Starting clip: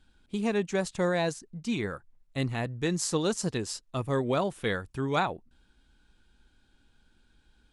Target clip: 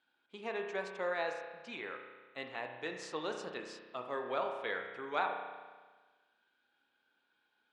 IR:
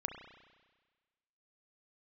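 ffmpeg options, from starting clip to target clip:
-filter_complex "[0:a]highpass=580,lowpass=3.1k[a];[1:a]atrim=start_sample=2205[b];[a][b]afir=irnorm=-1:irlink=0,volume=-4dB"

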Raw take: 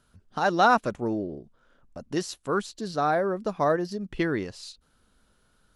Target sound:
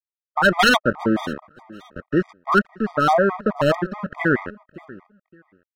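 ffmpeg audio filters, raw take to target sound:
-af "equalizer=f=210:w=1.7:g=5.5,aeval=exprs='val(0)*gte(abs(val(0)),0.0282)':c=same,lowpass=f=1.5k:t=q:w=2.6,aeval=exprs='0.224*(abs(mod(val(0)/0.224+3,4)-2)-1)':c=same,aecho=1:1:566|1132:0.1|0.021,afftfilt=real='re*gt(sin(2*PI*4.7*pts/sr)*(1-2*mod(floor(b*sr/1024/630),2)),0)':imag='im*gt(sin(2*PI*4.7*pts/sr)*(1-2*mod(floor(b*sr/1024/630),2)),0)':win_size=1024:overlap=0.75,volume=7dB"

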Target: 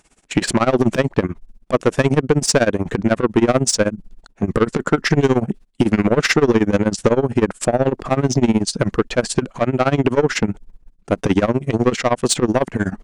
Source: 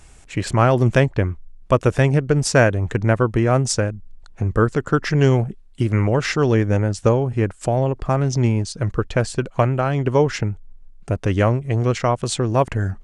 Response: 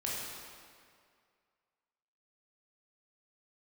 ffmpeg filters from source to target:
-filter_complex "[0:a]agate=range=-16dB:threshold=-39dB:ratio=16:detection=peak,lowshelf=f=140:t=q:w=1.5:g=-11.5,asplit=2[a][b];[b]acompressor=threshold=-26dB:ratio=6,volume=1dB[c];[a][c]amix=inputs=2:normalize=0,alimiter=limit=-5dB:level=0:latency=1:release=165,asoftclip=type=tanh:threshold=-13dB,tremolo=f=16:d=0.91,volume=8dB"

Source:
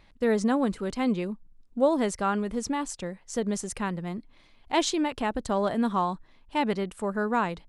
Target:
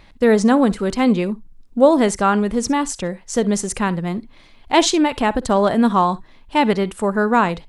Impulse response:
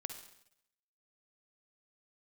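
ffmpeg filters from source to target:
-filter_complex "[0:a]asplit=2[a][b];[1:a]atrim=start_sample=2205,atrim=end_sample=3087[c];[b][c]afir=irnorm=-1:irlink=0,volume=-4dB[d];[a][d]amix=inputs=2:normalize=0,volume=7dB"

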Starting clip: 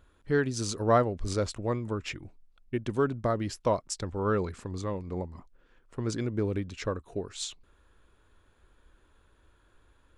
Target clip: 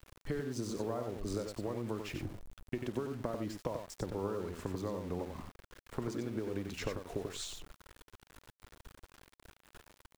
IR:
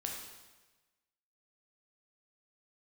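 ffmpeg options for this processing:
-filter_complex "[0:a]acrossover=split=200|1000[a][b][c];[a]acompressor=threshold=-45dB:ratio=4[d];[b]acompressor=threshold=-31dB:ratio=4[e];[c]acompressor=threshold=-49dB:ratio=4[f];[d][e][f]amix=inputs=3:normalize=0,asplit=3[g][h][i];[g]afade=t=out:st=3.51:d=0.02[j];[h]highshelf=f=3.9k:g=-7.5,afade=t=in:st=3.51:d=0.02,afade=t=out:st=6.04:d=0.02[k];[i]afade=t=in:st=6.04:d=0.02[l];[j][k][l]amix=inputs=3:normalize=0,acompressor=threshold=-41dB:ratio=8,aecho=1:1:52|92:0.133|0.501,aeval=exprs='val(0)*gte(abs(val(0)),0.00178)':c=same,volume=6.5dB"

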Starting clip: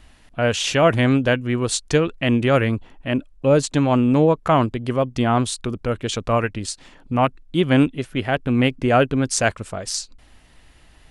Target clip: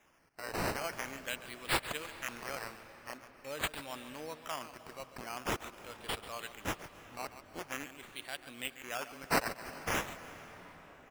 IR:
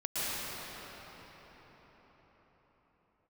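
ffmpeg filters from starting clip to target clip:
-filter_complex "[0:a]aderivative,aecho=1:1:139:0.211,acrusher=samples=10:mix=1:aa=0.000001:lfo=1:lforange=6:lforate=0.45,asplit=2[a][b];[1:a]atrim=start_sample=2205,adelay=146[c];[b][c]afir=irnorm=-1:irlink=0,volume=-21.5dB[d];[a][d]amix=inputs=2:normalize=0,volume=-5dB"

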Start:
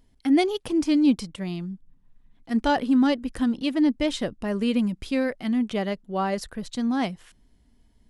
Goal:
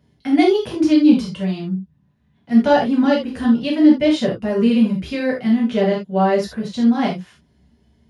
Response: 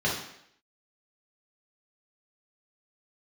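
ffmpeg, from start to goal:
-filter_complex "[0:a]highpass=60[a];[1:a]atrim=start_sample=2205,afade=t=out:st=0.14:d=0.01,atrim=end_sample=6615[b];[a][b]afir=irnorm=-1:irlink=0,volume=-5dB"

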